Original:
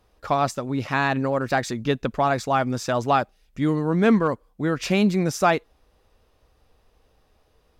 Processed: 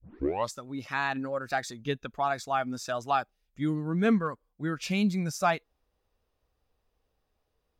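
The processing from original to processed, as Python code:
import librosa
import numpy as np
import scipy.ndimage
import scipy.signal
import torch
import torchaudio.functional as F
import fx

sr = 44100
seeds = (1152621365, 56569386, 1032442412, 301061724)

y = fx.tape_start_head(x, sr, length_s=0.52)
y = fx.noise_reduce_blind(y, sr, reduce_db=9)
y = y * librosa.db_to_amplitude(-6.0)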